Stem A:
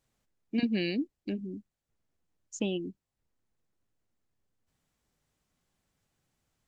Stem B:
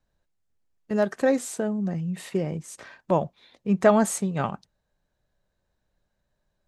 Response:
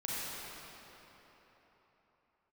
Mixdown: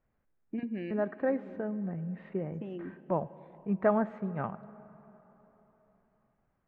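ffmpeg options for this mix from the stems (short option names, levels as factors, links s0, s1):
-filter_complex "[0:a]acompressor=threshold=0.0158:ratio=3,volume=1,asplit=2[s0][s1];[s1]volume=0.126[s2];[1:a]volume=0.376,asplit=3[s3][s4][s5];[s4]volume=0.0944[s6];[s5]apad=whole_len=294555[s7];[s0][s7]sidechaincompress=threshold=0.0112:ratio=8:attack=5.5:release=502[s8];[2:a]atrim=start_sample=2205[s9];[s2][s6]amix=inputs=2:normalize=0[s10];[s10][s9]afir=irnorm=-1:irlink=0[s11];[s8][s3][s11]amix=inputs=3:normalize=0,lowpass=f=2000:w=0.5412,lowpass=f=2000:w=1.3066"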